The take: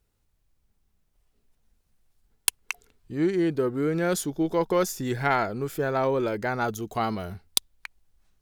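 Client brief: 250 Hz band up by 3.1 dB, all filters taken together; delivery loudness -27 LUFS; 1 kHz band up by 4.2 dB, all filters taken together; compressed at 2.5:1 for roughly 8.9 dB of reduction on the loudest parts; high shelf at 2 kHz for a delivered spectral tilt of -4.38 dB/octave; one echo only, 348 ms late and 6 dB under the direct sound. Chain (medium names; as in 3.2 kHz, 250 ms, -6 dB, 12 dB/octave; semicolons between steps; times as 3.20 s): peaking EQ 250 Hz +4 dB; peaking EQ 1 kHz +3.5 dB; treble shelf 2 kHz +7.5 dB; compression 2.5:1, threshold -25 dBFS; delay 348 ms -6 dB; trim +0.5 dB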